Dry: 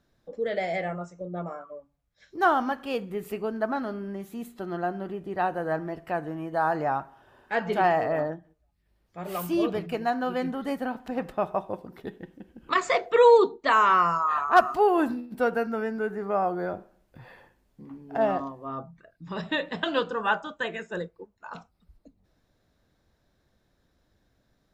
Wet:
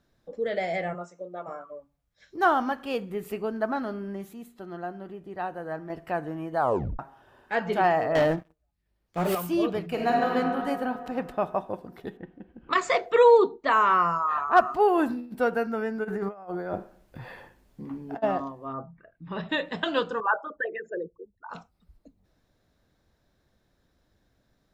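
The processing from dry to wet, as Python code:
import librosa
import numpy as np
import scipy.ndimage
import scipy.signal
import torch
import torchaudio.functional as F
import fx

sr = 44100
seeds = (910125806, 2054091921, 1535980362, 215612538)

y = fx.highpass(x, sr, hz=fx.line((0.93, 200.0), (1.47, 540.0)), slope=12, at=(0.93, 1.47), fade=0.02)
y = fx.leveller(y, sr, passes=3, at=(8.15, 9.35))
y = fx.reverb_throw(y, sr, start_s=9.89, length_s=0.43, rt60_s=2.7, drr_db=-2.5)
y = fx.lowpass(y, sr, hz=2400.0, slope=12, at=(12.17, 12.73))
y = fx.high_shelf(y, sr, hz=3100.0, db=-8.0, at=(13.23, 14.8))
y = fx.over_compress(y, sr, threshold_db=-33.0, ratio=-0.5, at=(16.03, 18.22), fade=0.02)
y = fx.lowpass(y, sr, hz=fx.line((18.72, 1600.0), (19.48, 4200.0)), slope=24, at=(18.72, 19.48), fade=0.02)
y = fx.envelope_sharpen(y, sr, power=3.0, at=(20.2, 21.5))
y = fx.edit(y, sr, fx.clip_gain(start_s=4.33, length_s=1.57, db=-6.0),
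    fx.tape_stop(start_s=6.59, length_s=0.4), tone=tone)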